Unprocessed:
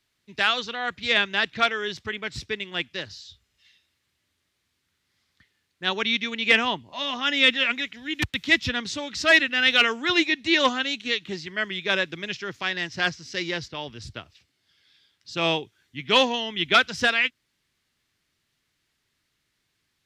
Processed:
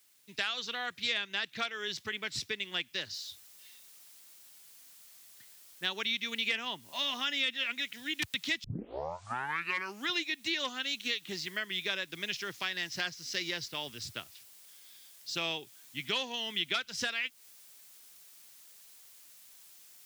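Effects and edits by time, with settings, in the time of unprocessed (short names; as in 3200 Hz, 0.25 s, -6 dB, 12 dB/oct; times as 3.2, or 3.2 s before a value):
3.14 noise floor step -69 dB -59 dB
8.64 tape start 1.47 s
whole clip: HPF 110 Hz; compressor 6:1, threshold -28 dBFS; high shelf 2400 Hz +11 dB; gain -7 dB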